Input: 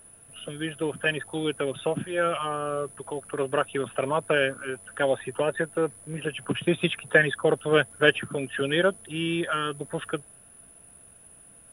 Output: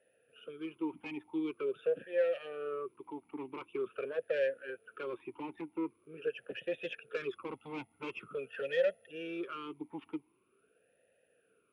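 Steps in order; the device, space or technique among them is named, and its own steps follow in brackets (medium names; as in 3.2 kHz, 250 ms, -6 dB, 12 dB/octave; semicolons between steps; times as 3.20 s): 7.31–9.11 s: comb 1.5 ms, depth 77%; talk box (valve stage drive 22 dB, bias 0.5; talking filter e-u 0.45 Hz); trim +2.5 dB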